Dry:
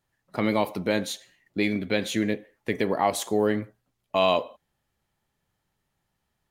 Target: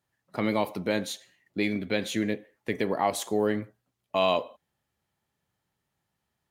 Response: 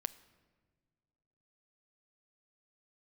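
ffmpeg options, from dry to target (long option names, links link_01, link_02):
-af "highpass=64,volume=-2.5dB"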